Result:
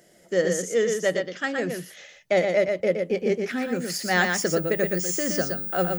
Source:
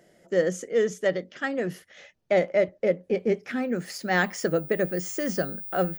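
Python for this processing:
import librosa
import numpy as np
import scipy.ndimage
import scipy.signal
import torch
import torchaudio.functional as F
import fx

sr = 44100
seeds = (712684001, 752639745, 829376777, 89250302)

y = fx.high_shelf(x, sr, hz=3600.0, db=10.0)
y = y + 10.0 ** (-5.0 / 20.0) * np.pad(y, (int(119 * sr / 1000.0), 0))[:len(y)]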